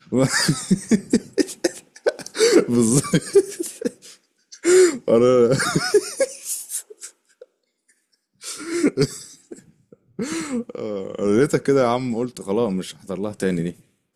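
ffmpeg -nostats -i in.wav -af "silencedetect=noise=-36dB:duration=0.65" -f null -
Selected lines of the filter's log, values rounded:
silence_start: 7.43
silence_end: 8.42 | silence_duration: 1.00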